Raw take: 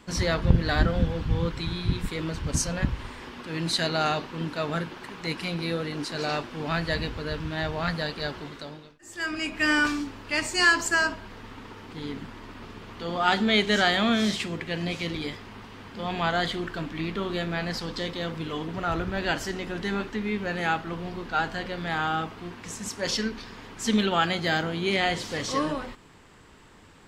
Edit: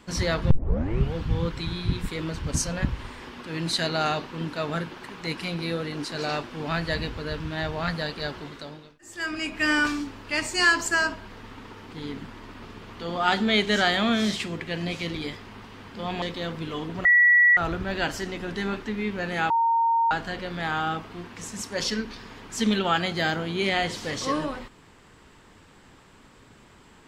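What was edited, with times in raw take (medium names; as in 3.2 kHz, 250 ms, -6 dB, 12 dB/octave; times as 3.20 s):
0.51 s: tape start 0.64 s
16.22–18.01 s: delete
18.84 s: add tone 1.94 kHz -13.5 dBFS 0.52 s
20.77–21.38 s: bleep 920 Hz -18.5 dBFS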